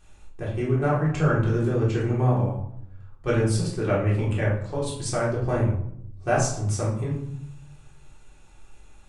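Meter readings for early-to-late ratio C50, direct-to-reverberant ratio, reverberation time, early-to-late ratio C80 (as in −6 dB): 3.5 dB, −7.0 dB, 0.70 s, 8.5 dB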